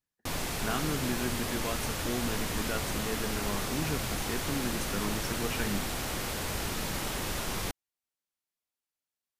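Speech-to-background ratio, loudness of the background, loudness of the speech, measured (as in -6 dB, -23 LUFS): -3.0 dB, -33.5 LUFS, -36.5 LUFS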